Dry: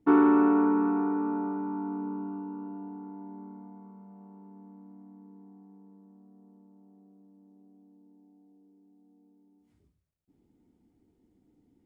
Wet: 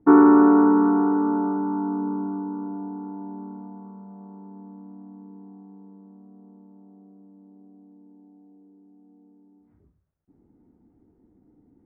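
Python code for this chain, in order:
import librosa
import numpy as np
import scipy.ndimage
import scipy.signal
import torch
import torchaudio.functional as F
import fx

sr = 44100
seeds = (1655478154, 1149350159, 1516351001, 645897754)

y = scipy.signal.sosfilt(scipy.signal.butter(4, 1600.0, 'lowpass', fs=sr, output='sos'), x)
y = F.gain(torch.from_numpy(y), 7.5).numpy()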